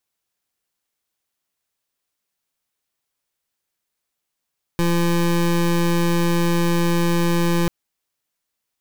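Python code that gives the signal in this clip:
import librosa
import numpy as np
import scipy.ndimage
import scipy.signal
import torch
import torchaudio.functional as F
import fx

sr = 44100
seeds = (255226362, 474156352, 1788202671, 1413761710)

y = fx.pulse(sr, length_s=2.89, hz=171.0, level_db=-18.0, duty_pct=25)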